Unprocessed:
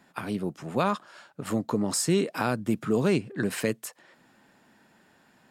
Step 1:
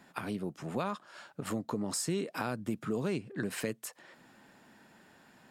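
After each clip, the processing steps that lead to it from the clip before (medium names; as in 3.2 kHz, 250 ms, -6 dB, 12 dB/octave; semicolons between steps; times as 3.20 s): compression 2:1, threshold -39 dBFS, peak gain reduction 11 dB; trim +1 dB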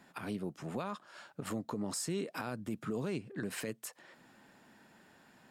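peak limiter -25.5 dBFS, peak gain reduction 7.5 dB; trim -2 dB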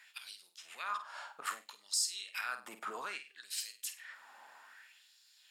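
flutter echo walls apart 8.5 m, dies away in 0.3 s; LFO high-pass sine 0.62 Hz 850–4500 Hz; trim +2.5 dB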